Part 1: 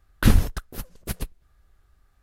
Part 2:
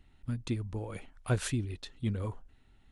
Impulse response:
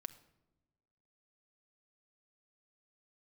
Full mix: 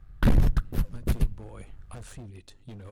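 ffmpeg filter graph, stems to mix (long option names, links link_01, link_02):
-filter_complex "[0:a]bass=frequency=250:gain=11,treble=frequency=4000:gain=-8,asoftclip=type=hard:threshold=-10dB,volume=2.5dB,asplit=2[link_01][link_02];[link_02]volume=-11.5dB[link_03];[1:a]asoftclip=type=hard:threshold=-32.5dB,equalizer=frequency=7100:width=1.5:gain=2.5,acrossover=split=1100|7200[link_04][link_05][link_06];[link_04]acompressor=threshold=-41dB:ratio=4[link_07];[link_05]acompressor=threshold=-55dB:ratio=4[link_08];[link_06]acompressor=threshold=-53dB:ratio=4[link_09];[link_07][link_08][link_09]amix=inputs=3:normalize=0,adelay=650,volume=-1dB,asplit=2[link_10][link_11];[link_11]volume=-6dB[link_12];[2:a]atrim=start_sample=2205[link_13];[link_03][link_12]amix=inputs=2:normalize=0[link_14];[link_14][link_13]afir=irnorm=-1:irlink=0[link_15];[link_01][link_10][link_15]amix=inputs=3:normalize=0,tremolo=f=100:d=0.462,asoftclip=type=hard:threshold=-9dB,alimiter=limit=-14.5dB:level=0:latency=1:release=13"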